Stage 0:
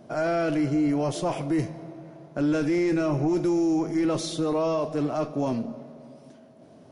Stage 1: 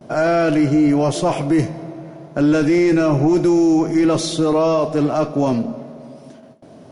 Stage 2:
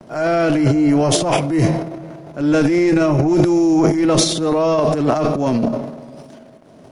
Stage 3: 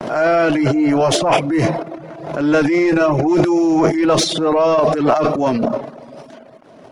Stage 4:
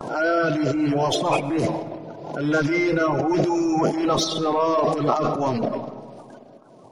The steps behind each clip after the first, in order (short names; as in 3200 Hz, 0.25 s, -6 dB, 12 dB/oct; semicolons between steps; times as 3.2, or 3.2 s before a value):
gate with hold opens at -42 dBFS; gain +9 dB
transient shaper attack -8 dB, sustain +12 dB; crossover distortion -54.5 dBFS
overdrive pedal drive 11 dB, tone 2500 Hz, clips at -1 dBFS; reverb removal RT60 0.51 s; backwards sustainer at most 68 dB/s; gain +1 dB
bin magnitudes rounded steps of 30 dB; on a send at -13 dB: reverb RT60 2.0 s, pre-delay 80 ms; on the sum: gain -6 dB